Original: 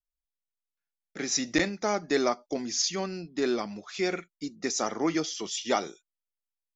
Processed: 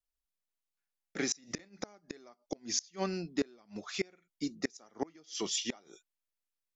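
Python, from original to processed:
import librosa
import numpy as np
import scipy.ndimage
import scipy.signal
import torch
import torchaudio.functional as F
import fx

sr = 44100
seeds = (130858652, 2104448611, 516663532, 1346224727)

y = fx.gate_flip(x, sr, shuts_db=-20.0, range_db=-30)
y = fx.vibrato(y, sr, rate_hz=0.34, depth_cents=9.1)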